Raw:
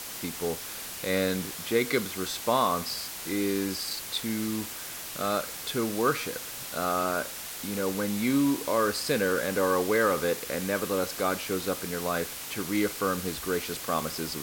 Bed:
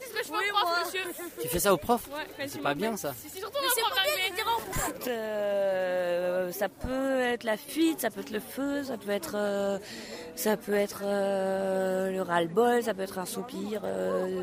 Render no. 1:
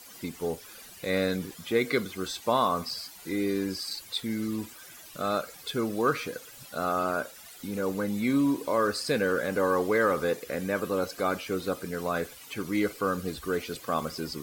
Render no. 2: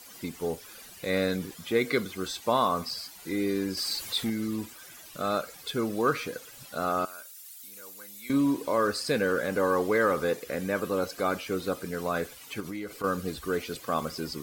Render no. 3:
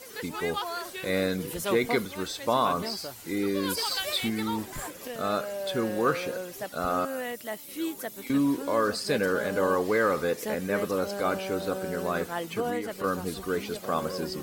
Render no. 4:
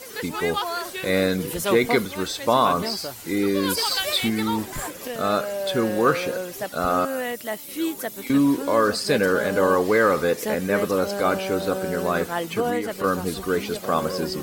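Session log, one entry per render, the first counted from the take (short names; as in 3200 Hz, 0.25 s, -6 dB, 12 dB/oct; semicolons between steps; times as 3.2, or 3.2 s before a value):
denoiser 14 dB, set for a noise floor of -39 dBFS
3.77–4.3 power-law curve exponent 0.7; 7.05–8.3 pre-emphasis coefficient 0.97; 12.6–13.04 compressor 5:1, threshold -33 dBFS
add bed -6.5 dB
gain +6 dB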